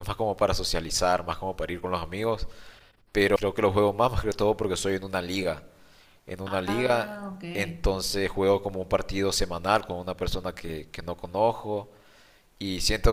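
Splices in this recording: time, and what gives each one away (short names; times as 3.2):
3.36 sound cut off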